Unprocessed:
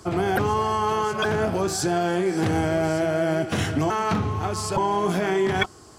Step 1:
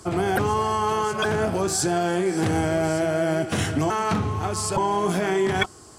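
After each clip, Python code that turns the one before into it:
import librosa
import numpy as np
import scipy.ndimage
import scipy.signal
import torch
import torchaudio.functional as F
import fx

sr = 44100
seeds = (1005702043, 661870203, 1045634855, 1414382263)

y = fx.peak_eq(x, sr, hz=8800.0, db=6.5, octaves=0.67)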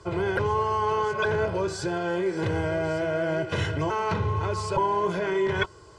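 y = fx.rider(x, sr, range_db=10, speed_s=0.5)
y = scipy.signal.sosfilt(scipy.signal.butter(2, 3900.0, 'lowpass', fs=sr, output='sos'), y)
y = y + 0.79 * np.pad(y, (int(2.0 * sr / 1000.0), 0))[:len(y)]
y = F.gain(torch.from_numpy(y), -4.5).numpy()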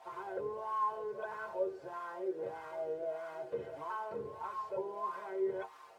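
y = fx.quant_dither(x, sr, seeds[0], bits=6, dither='triangular')
y = fx.wah_lfo(y, sr, hz=1.6, low_hz=440.0, high_hz=1100.0, q=4.2)
y = fx.stiff_resonator(y, sr, f0_hz=68.0, decay_s=0.22, stiffness=0.008)
y = F.gain(torch.from_numpy(y), 2.5).numpy()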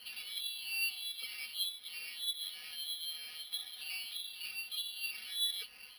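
y = fx.dynamic_eq(x, sr, hz=690.0, q=0.72, threshold_db=-50.0, ratio=4.0, max_db=-7)
y = fx.freq_invert(y, sr, carrier_hz=3800)
y = np.repeat(y[::6], 6)[:len(y)]
y = F.gain(torch.from_numpy(y), 3.0).numpy()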